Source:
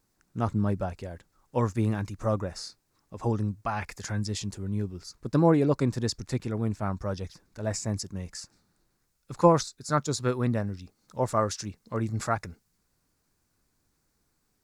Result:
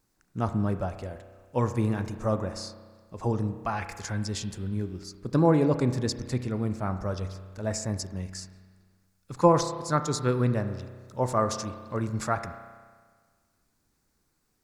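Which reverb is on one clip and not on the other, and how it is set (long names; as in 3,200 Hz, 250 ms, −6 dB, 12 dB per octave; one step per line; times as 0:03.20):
spring reverb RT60 1.6 s, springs 32 ms, chirp 55 ms, DRR 9 dB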